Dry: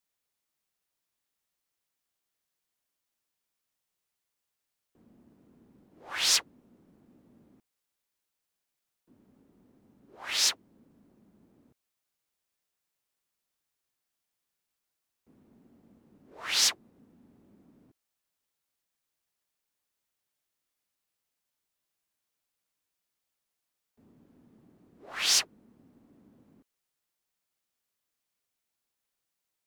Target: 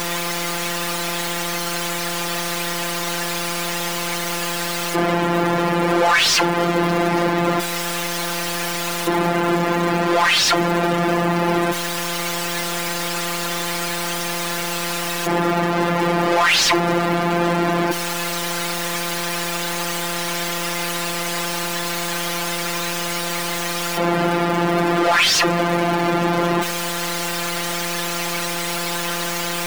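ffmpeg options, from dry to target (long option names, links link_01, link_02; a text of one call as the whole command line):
ffmpeg -i in.wav -filter_complex "[0:a]aeval=exprs='val(0)+0.5*0.0398*sgn(val(0))':channel_layout=same,afftfilt=real='hypot(re,im)*cos(PI*b)':imag='0':win_size=1024:overlap=0.75,asplit=2[link_01][link_02];[link_02]highpass=frequency=720:poles=1,volume=35dB,asoftclip=type=tanh:threshold=-3dB[link_03];[link_01][link_03]amix=inputs=2:normalize=0,lowpass=frequency=2800:poles=1,volume=-6dB" out.wav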